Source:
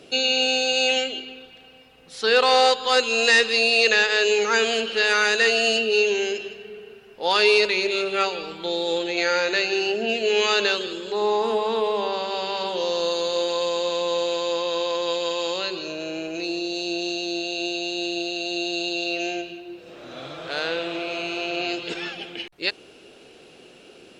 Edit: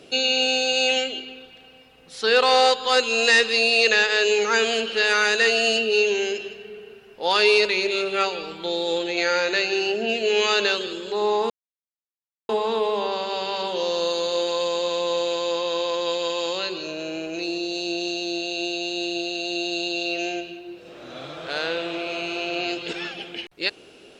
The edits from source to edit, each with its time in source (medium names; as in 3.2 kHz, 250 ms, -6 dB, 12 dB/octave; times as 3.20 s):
11.50 s: insert silence 0.99 s